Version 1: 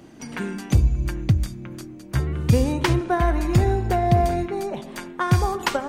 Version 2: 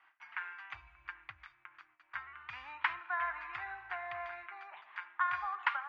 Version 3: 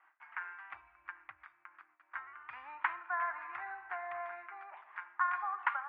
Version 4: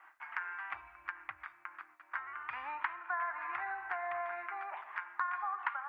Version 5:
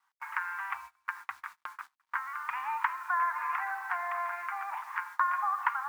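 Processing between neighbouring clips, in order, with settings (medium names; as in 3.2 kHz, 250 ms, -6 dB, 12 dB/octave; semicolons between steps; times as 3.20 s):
inverse Chebyshev high-pass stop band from 530 Hz, stop band 40 dB; gate with hold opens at -48 dBFS; low-pass 2.3 kHz 24 dB/octave; trim -4 dB
three-band isolator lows -17 dB, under 240 Hz, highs -23 dB, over 2.1 kHz; trim +1.5 dB
compression 3:1, threshold -45 dBFS, peak gain reduction 14 dB; trim +8.5 dB
bit crusher 10-bit; resonant low shelf 700 Hz -9.5 dB, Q 3; gate -47 dBFS, range -23 dB; trim +2.5 dB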